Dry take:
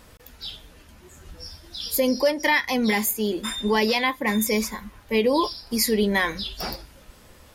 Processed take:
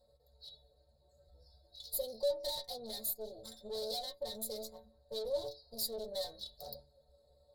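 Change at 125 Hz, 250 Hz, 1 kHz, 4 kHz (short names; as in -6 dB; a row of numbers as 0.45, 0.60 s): -25.0, -30.5, -23.5, -13.5 dB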